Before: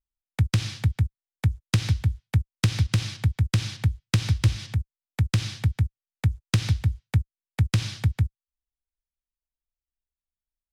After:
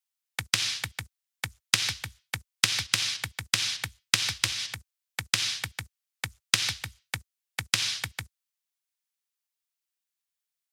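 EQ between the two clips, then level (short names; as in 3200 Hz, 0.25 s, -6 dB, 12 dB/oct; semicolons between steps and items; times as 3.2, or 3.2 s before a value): HPF 650 Hz 6 dB/oct; tilt shelf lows -7 dB, about 930 Hz; +2.0 dB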